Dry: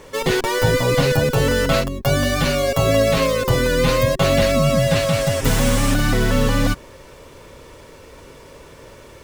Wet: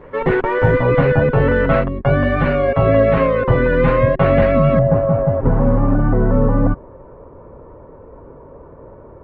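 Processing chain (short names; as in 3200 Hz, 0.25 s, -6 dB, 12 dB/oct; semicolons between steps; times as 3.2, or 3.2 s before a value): LPF 2000 Hz 24 dB/oct, from 4.79 s 1100 Hz; gain +3.5 dB; Opus 24 kbps 48000 Hz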